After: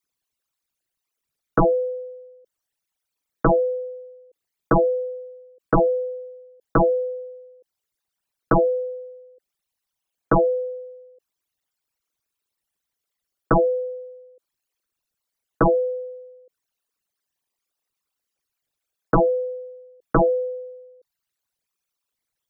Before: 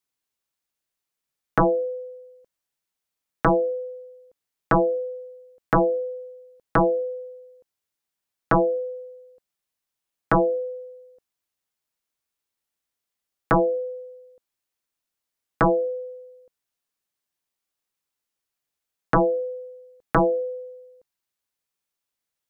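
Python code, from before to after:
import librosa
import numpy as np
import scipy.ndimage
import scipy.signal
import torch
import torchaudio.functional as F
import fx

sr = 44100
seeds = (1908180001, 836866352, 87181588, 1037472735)

y = fx.envelope_sharpen(x, sr, power=3.0)
y = y * librosa.db_to_amplitude(2.0)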